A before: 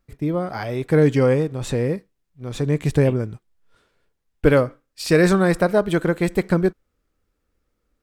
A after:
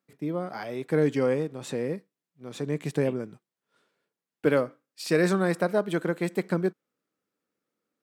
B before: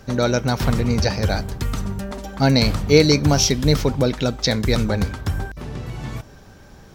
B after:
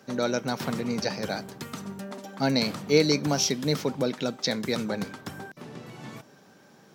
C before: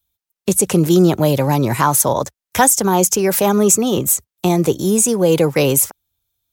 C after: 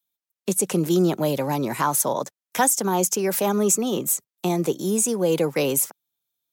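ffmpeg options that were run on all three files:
ffmpeg -i in.wav -af "highpass=frequency=160:width=0.5412,highpass=frequency=160:width=1.3066,volume=-7dB" out.wav

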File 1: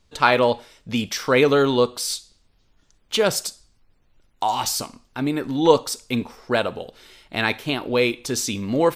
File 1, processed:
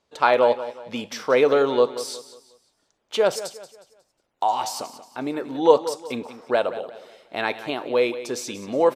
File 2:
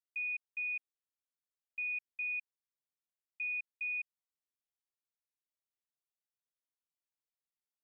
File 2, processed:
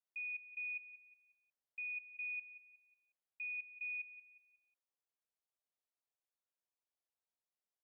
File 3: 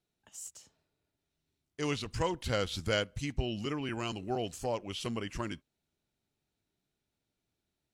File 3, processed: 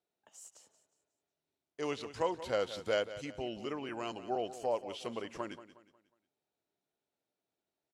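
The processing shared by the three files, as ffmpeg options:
ffmpeg -i in.wav -af "bandpass=frequency=600:width_type=q:width=1.2:csg=0,crystalizer=i=5:c=0,aecho=1:1:181|362|543|724:0.2|0.0738|0.0273|0.0101,volume=1dB" out.wav

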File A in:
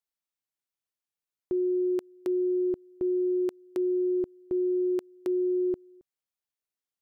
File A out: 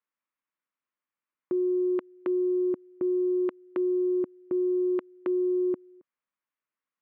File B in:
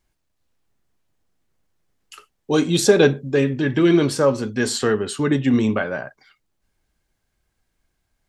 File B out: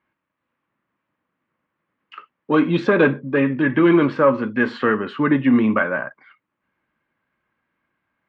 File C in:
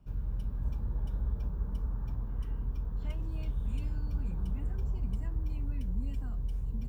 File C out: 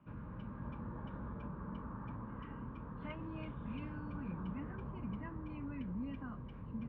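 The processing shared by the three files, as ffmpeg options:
ffmpeg -i in.wav -af "acontrast=54,highpass=220,equalizer=frequency=410:width_type=q:width=4:gain=-9,equalizer=frequency=730:width_type=q:width=4:gain=-9,equalizer=frequency=1100:width_type=q:width=4:gain=5,lowpass=frequency=2400:width=0.5412,lowpass=frequency=2400:width=1.3066" out.wav

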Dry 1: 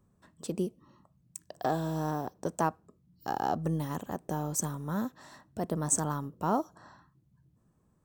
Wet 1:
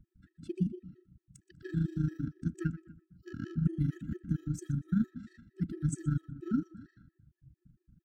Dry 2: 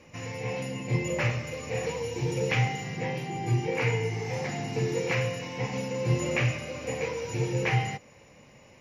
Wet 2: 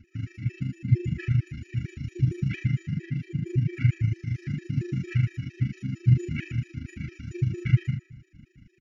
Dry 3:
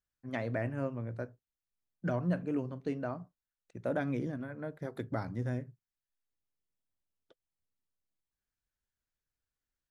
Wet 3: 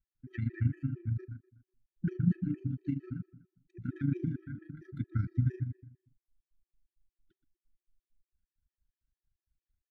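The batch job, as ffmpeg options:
ffmpeg -i in.wav -filter_complex "[0:a]aemphasis=mode=reproduction:type=riaa,afftfilt=real='re*(1-between(b*sr/4096,380,1300))':imag='im*(1-between(b*sr/4096,380,1300))':win_size=4096:overlap=0.75,tremolo=f=26:d=0.667,asplit=2[link_01][link_02];[link_02]adelay=123,lowpass=frequency=3400:poles=1,volume=-12.5dB,asplit=2[link_03][link_04];[link_04]adelay=123,lowpass=frequency=3400:poles=1,volume=0.36,asplit=2[link_05][link_06];[link_06]adelay=123,lowpass=frequency=3400:poles=1,volume=0.36,asplit=2[link_07][link_08];[link_08]adelay=123,lowpass=frequency=3400:poles=1,volume=0.36[link_09];[link_01][link_03][link_05][link_07][link_09]amix=inputs=5:normalize=0,afftfilt=real='re*gt(sin(2*PI*4.4*pts/sr)*(1-2*mod(floor(b*sr/1024/330),2)),0)':imag='im*gt(sin(2*PI*4.4*pts/sr)*(1-2*mod(floor(b*sr/1024/330),2)),0)':win_size=1024:overlap=0.75" out.wav

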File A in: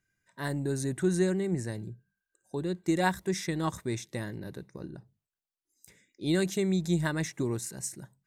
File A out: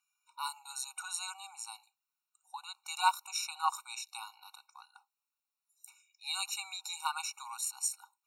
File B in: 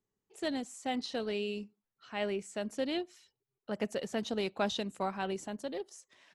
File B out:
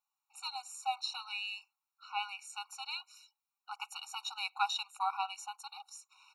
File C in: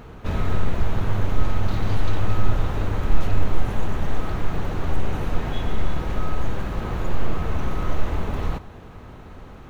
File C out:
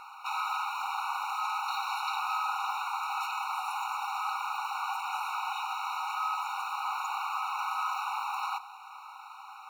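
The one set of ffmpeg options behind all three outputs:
ffmpeg -i in.wav -af "afftfilt=real='re*eq(mod(floor(b*sr/1024/740),2),1)':imag='im*eq(mod(floor(b*sr/1024/740),2),1)':win_size=1024:overlap=0.75,volume=5dB" out.wav

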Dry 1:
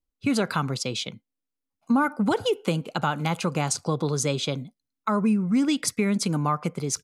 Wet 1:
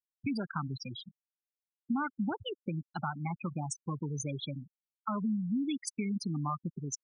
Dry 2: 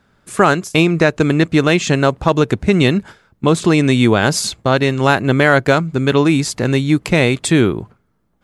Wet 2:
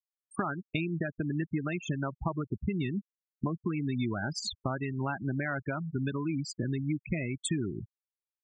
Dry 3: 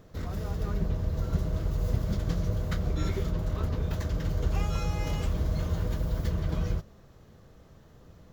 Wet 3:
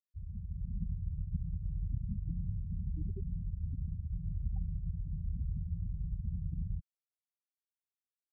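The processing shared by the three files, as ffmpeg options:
ffmpeg -i in.wav -af "acompressor=threshold=-19dB:ratio=8,equalizer=frequency=480:width_type=o:width=0.51:gain=-10,afftfilt=real='re*gte(hypot(re,im),0.112)':imag='im*gte(hypot(re,im),0.112)':win_size=1024:overlap=0.75,volume=-7.5dB" out.wav

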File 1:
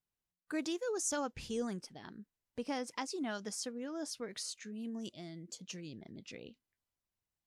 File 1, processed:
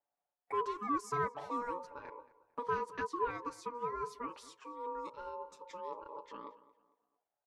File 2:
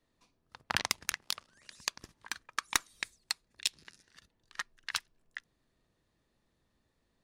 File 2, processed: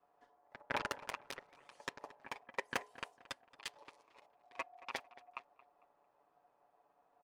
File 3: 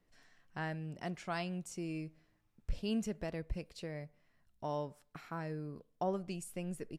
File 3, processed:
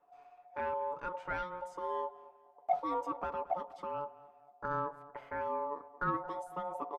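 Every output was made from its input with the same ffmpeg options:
ffmpeg -i in.wav -filter_complex "[0:a]equalizer=frequency=4300:width=0.35:gain=-12,bandreject=frequency=60:width_type=h:width=6,bandreject=frequency=120:width_type=h:width=6,bandreject=frequency=180:width_type=h:width=6,bandreject=frequency=240:width_type=h:width=6,bandreject=frequency=300:width_type=h:width=6,aecho=1:1:7.2:0.73,aeval=exprs='val(0)*sin(2*PI*720*n/s)':channel_layout=same,asplit=2[link_01][link_02];[link_02]highpass=frequency=720:poles=1,volume=13dB,asoftclip=type=tanh:threshold=-18dB[link_03];[link_01][link_03]amix=inputs=2:normalize=0,lowpass=frequency=1200:poles=1,volume=-6dB,asplit=2[link_04][link_05];[link_05]adelay=225,lowpass=frequency=3200:poles=1,volume=-18dB,asplit=2[link_06][link_07];[link_07]adelay=225,lowpass=frequency=3200:poles=1,volume=0.37,asplit=2[link_08][link_09];[link_09]adelay=225,lowpass=frequency=3200:poles=1,volume=0.37[link_10];[link_06][link_08][link_10]amix=inputs=3:normalize=0[link_11];[link_04][link_11]amix=inputs=2:normalize=0,volume=2dB" out.wav

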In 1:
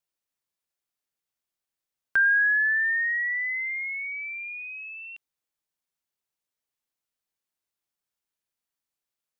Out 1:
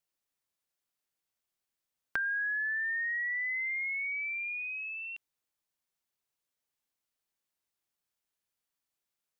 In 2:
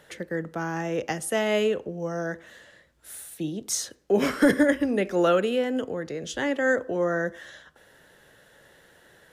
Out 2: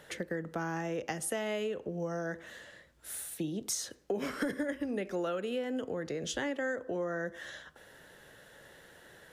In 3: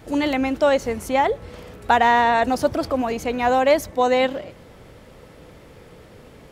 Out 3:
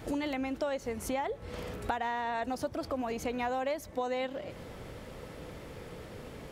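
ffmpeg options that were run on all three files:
ffmpeg -i in.wav -af "acompressor=threshold=-32dB:ratio=6" out.wav

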